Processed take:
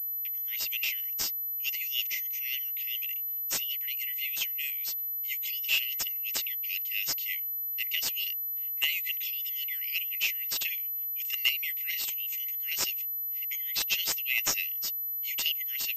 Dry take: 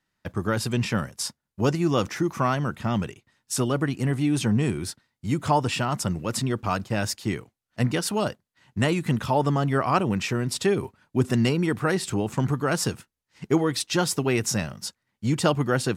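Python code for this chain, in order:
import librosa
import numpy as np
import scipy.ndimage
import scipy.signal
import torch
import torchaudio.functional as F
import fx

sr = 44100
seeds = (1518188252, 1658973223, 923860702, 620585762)

y = scipy.signal.sosfilt(scipy.signal.cheby1(6, 9, 2000.0, 'highpass', fs=sr, output='sos'), x)
y = fx.pwm(y, sr, carrier_hz=12000.0)
y = y * librosa.db_to_amplitude(8.0)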